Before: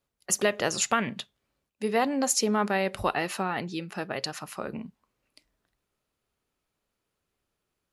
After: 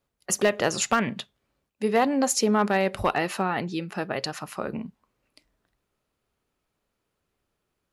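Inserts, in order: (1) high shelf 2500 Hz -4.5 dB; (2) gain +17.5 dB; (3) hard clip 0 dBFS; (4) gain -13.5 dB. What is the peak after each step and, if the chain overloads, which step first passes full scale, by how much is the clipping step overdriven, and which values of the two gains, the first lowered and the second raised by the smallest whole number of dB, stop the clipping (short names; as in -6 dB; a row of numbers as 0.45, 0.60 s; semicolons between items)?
-12.0, +5.5, 0.0, -13.5 dBFS; step 2, 5.5 dB; step 2 +11.5 dB, step 4 -7.5 dB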